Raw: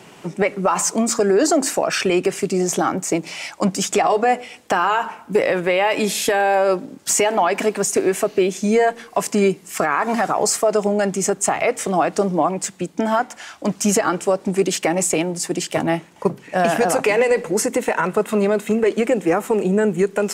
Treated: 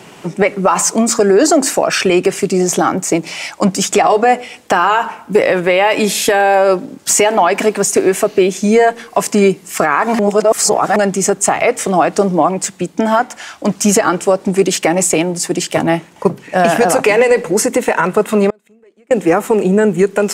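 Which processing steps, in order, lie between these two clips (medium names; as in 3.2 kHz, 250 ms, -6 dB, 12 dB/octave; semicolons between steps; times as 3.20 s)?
10.19–10.96 s: reverse; 18.50–19.11 s: inverted gate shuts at -20 dBFS, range -36 dB; trim +6 dB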